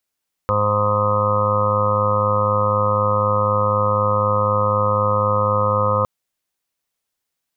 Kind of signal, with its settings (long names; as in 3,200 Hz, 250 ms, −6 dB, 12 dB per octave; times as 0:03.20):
steady harmonic partials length 5.56 s, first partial 104 Hz, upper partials −8/−18.5/−16/2.5/−14.5/−15/−17/−8/−1/−5/1 dB, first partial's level −22 dB